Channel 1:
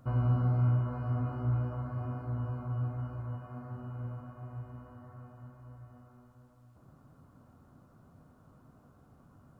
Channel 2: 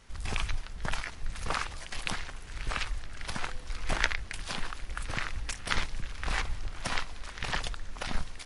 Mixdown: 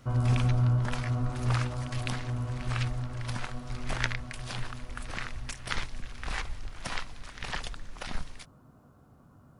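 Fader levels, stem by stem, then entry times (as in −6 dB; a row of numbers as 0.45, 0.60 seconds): +2.0, −3.0 decibels; 0.00, 0.00 seconds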